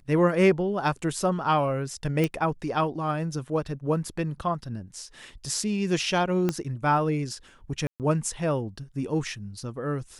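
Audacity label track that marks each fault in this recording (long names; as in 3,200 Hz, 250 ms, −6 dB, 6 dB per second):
2.240000	2.240000	click −13 dBFS
6.490000	6.490000	click −12 dBFS
7.870000	8.000000	drop-out 128 ms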